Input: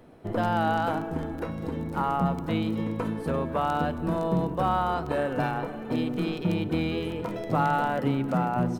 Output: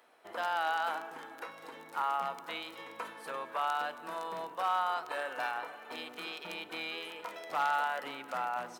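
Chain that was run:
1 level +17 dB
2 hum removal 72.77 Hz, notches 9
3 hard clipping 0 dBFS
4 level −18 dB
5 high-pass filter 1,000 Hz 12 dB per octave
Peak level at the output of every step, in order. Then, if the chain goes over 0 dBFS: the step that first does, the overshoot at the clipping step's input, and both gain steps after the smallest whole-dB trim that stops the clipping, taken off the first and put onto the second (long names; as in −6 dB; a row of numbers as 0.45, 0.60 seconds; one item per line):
+5.0, +4.5, 0.0, −18.0, −19.5 dBFS
step 1, 4.5 dB
step 1 +12 dB, step 4 −13 dB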